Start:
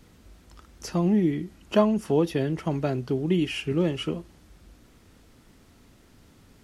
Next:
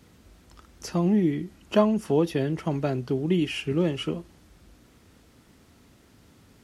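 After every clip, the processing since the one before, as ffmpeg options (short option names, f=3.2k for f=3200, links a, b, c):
-af "highpass=53"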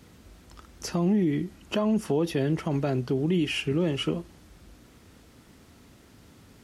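-af "alimiter=limit=-19.5dB:level=0:latency=1:release=63,volume=2.5dB"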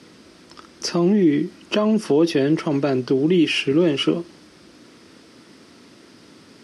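-af "highpass=210,equalizer=f=330:t=q:w=4:g=4,equalizer=f=780:t=q:w=4:g=-5,equalizer=f=5k:t=q:w=4:g=6,equalizer=f=7.2k:t=q:w=4:g=-7,lowpass=f=9.5k:w=0.5412,lowpass=f=9.5k:w=1.3066,volume=8dB"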